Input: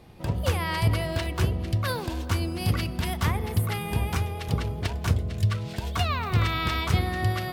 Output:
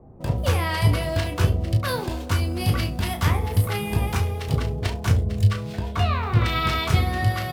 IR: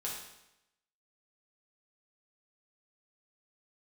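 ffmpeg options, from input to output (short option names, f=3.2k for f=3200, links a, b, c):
-filter_complex "[0:a]flanger=delay=7.6:depth=2.8:regen=77:speed=0.44:shape=sinusoidal,acrossover=split=490|1000[a][b][c];[c]aeval=exprs='sgn(val(0))*max(abs(val(0))-0.00133,0)':c=same[d];[a][b][d]amix=inputs=3:normalize=0,asettb=1/sr,asplit=3[e][f][g];[e]atrim=end=5.764[h];[f]atrim=start=5.76:end=6.46,asetpts=PTS-STARTPTS,afade=t=in:d=0.004:c=qsin,afade=t=out:st=0.696:d=0.004:c=qsin,highshelf=f=3.8k:g=-11[i];[g]atrim=start=6.456[j];[h][i]acrossfade=d=0.004:c1=hsin:c2=qsin[k];[k][j]acrossfade=d=0.004:c1=qsin:c2=hsin,aecho=1:1:20|34|70:0.398|0.398|0.141,volume=7dB"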